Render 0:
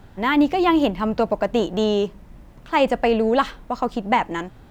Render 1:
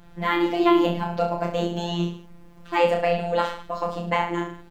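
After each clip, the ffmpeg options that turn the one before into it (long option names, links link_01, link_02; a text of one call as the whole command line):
ffmpeg -i in.wav -af "aecho=1:1:30|64.5|104.2|149.8|202.3:0.631|0.398|0.251|0.158|0.1,afftfilt=real='hypot(re,im)*cos(PI*b)':imag='0':win_size=1024:overlap=0.75,volume=-1dB" out.wav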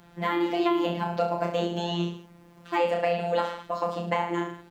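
ffmpeg -i in.wav -filter_complex "[0:a]highpass=frequency=160:poles=1,acrossover=split=850|5400[link_01][link_02][link_03];[link_01]acompressor=threshold=-23dB:ratio=4[link_04];[link_02]acompressor=threshold=-30dB:ratio=4[link_05];[link_03]acompressor=threshold=-54dB:ratio=4[link_06];[link_04][link_05][link_06]amix=inputs=3:normalize=0" out.wav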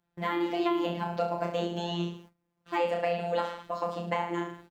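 ffmpeg -i in.wav -af "agate=range=-23dB:threshold=-47dB:ratio=16:detection=peak,volume=-3.5dB" out.wav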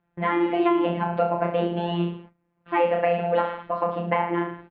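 ffmpeg -i in.wav -af "lowpass=frequency=2600:width=0.5412,lowpass=frequency=2600:width=1.3066,volume=7dB" out.wav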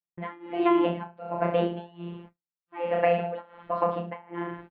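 ffmpeg -i in.wav -af "agate=range=-33dB:threshold=-42dB:ratio=3:detection=peak,tremolo=f=1.3:d=0.96" out.wav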